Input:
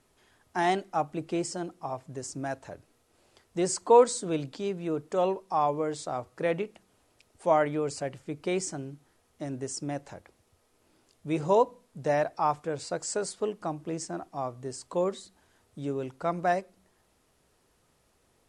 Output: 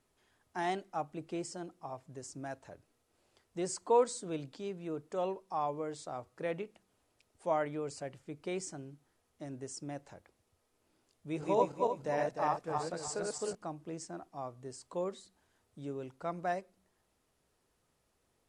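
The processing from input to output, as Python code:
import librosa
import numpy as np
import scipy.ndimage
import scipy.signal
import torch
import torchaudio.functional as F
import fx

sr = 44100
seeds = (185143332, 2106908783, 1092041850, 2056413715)

y = fx.reverse_delay_fb(x, sr, ms=151, feedback_pct=52, wet_db=-1.0, at=(11.27, 13.55))
y = y * 10.0 ** (-8.5 / 20.0)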